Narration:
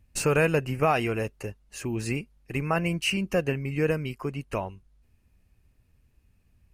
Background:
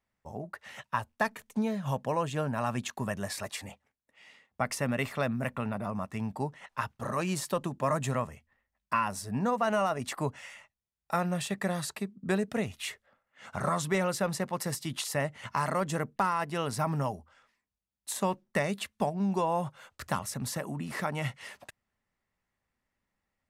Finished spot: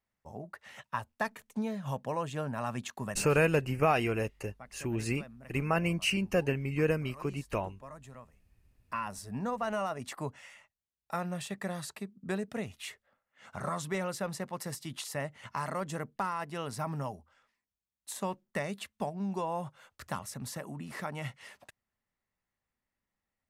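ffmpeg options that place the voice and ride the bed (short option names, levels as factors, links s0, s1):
-filter_complex "[0:a]adelay=3000,volume=0.708[s0];[1:a]volume=3.16,afade=t=out:st=3.09:d=0.22:silence=0.16788,afade=t=in:st=8.5:d=0.65:silence=0.199526[s1];[s0][s1]amix=inputs=2:normalize=0"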